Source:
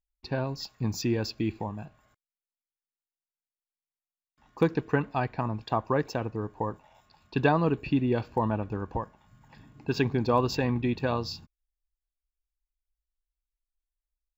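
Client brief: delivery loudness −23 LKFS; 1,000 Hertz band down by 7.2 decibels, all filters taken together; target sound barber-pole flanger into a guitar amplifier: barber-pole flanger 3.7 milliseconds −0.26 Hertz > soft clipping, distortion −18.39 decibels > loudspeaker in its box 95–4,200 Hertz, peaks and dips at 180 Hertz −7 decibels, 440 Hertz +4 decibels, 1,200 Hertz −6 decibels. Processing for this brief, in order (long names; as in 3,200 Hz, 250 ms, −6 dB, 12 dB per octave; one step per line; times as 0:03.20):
parametric band 1,000 Hz −7.5 dB
barber-pole flanger 3.7 ms −0.26 Hz
soft clipping −19.5 dBFS
loudspeaker in its box 95–4,200 Hz, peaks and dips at 180 Hz −7 dB, 440 Hz +4 dB, 1,200 Hz −6 dB
level +11.5 dB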